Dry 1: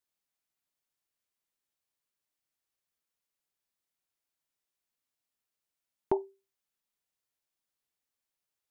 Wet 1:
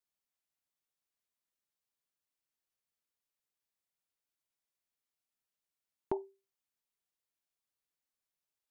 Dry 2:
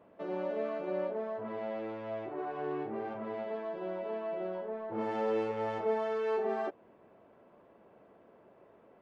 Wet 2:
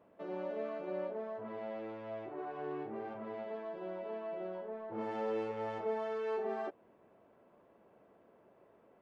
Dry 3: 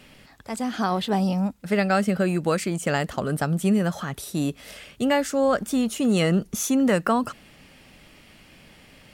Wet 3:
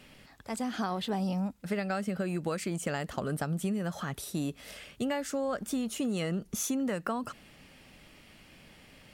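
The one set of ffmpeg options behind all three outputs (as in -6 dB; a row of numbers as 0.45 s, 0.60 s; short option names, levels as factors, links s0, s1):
-af "acompressor=threshold=0.0631:ratio=6,volume=0.596"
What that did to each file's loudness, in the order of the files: -6.5 LU, -4.5 LU, -9.5 LU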